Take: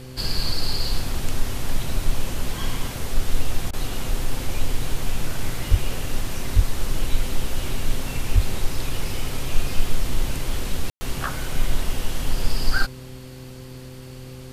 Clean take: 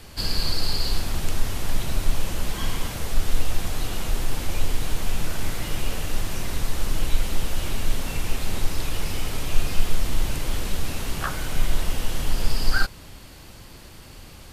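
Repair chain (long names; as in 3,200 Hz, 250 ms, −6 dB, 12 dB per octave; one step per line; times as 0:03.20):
hum removal 128.3 Hz, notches 4
0:05.70–0:05.82: high-pass filter 140 Hz 24 dB per octave
0:06.55–0:06.67: high-pass filter 140 Hz 24 dB per octave
0:08.34–0:08.46: high-pass filter 140 Hz 24 dB per octave
ambience match 0:10.90–0:11.01
repair the gap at 0:03.71, 21 ms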